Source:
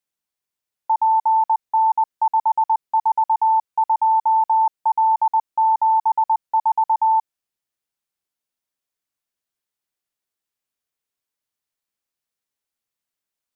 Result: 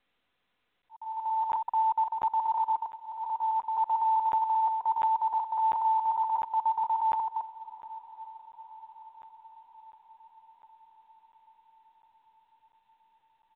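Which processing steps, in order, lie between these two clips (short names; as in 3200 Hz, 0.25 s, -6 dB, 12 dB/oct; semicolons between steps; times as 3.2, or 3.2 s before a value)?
reverse delay 0.13 s, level -7 dB; dynamic EQ 810 Hz, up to -6 dB, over -31 dBFS, Q 3.3; comb 4.1 ms, depth 53%; limiter -21 dBFS, peak gain reduction 6.5 dB; auto swell 0.696 s; diffused feedback echo 0.97 s, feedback 57%, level -16 dB; crackling interface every 0.70 s, samples 512, zero, from 0.82; µ-law 64 kbps 8000 Hz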